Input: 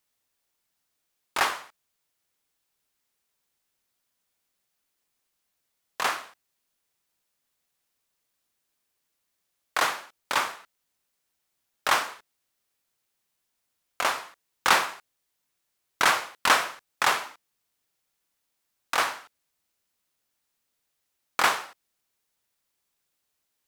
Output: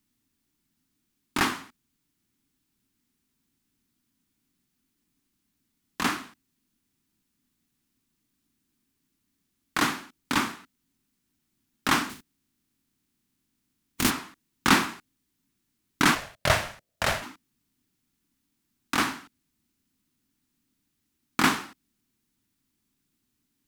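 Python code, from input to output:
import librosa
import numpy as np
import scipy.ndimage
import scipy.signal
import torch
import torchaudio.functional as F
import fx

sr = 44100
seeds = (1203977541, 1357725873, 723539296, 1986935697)

y = fx.spec_flatten(x, sr, power=0.41, at=(12.09, 14.09), fade=0.02)
y = fx.low_shelf_res(y, sr, hz=380.0, db=12.5, q=3.0)
y = fx.ring_mod(y, sr, carrier_hz=370.0, at=(16.14, 17.21), fade=0.02)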